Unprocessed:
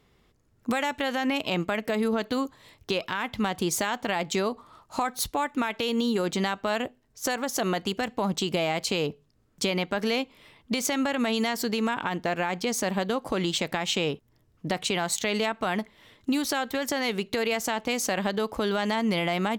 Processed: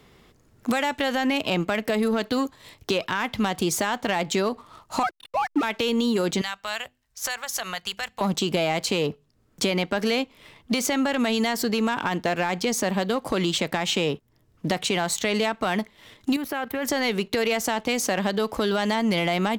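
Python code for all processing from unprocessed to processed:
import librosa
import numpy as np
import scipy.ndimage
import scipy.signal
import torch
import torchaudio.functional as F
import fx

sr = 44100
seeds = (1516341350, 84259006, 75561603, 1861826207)

y = fx.chain(x, sr, fx.sine_speech(),
    fx.backlash(play_db=-37.0), at=(5.03, 5.63))
y = fx.chain(y, sr, fx.tone_stack(knobs='10-0-10'),
    fx.hum_notches(base_hz=50, count=7), at=(6.41, 8.21))
y = fx.chain(y, sr, fx.band_shelf(hz=5700.0, db=-14.0, octaves=1.7),
    fx.level_steps(step_db=11), at=(16.36, 16.85))
y = fx.leveller(y, sr, passes=1)
y = fx.band_squash(y, sr, depth_pct=40)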